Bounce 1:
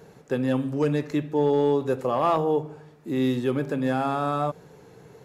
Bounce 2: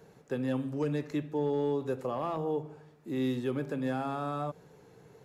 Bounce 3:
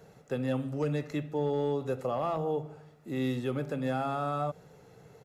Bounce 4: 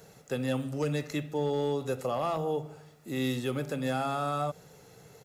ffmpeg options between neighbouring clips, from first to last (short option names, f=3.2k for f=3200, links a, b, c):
-filter_complex "[0:a]acrossover=split=380[a][b];[b]acompressor=threshold=-25dB:ratio=6[c];[a][c]amix=inputs=2:normalize=0,volume=-7dB"
-af "aecho=1:1:1.5:0.35,volume=1.5dB"
-af "highshelf=f=3.2k:g=12"